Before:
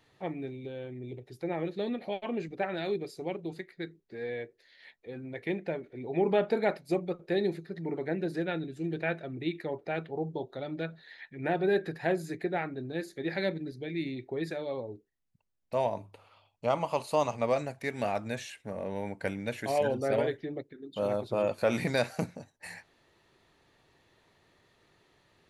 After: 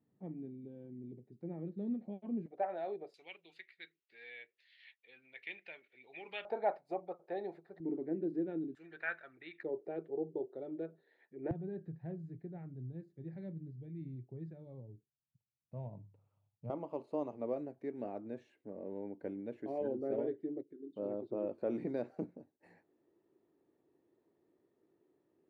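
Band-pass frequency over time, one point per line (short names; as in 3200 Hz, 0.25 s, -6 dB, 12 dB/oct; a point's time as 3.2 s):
band-pass, Q 2.9
210 Hz
from 2.46 s 690 Hz
from 3.14 s 2700 Hz
from 6.45 s 770 Hz
from 7.8 s 300 Hz
from 8.75 s 1500 Hz
from 9.63 s 390 Hz
from 11.51 s 130 Hz
from 16.7 s 330 Hz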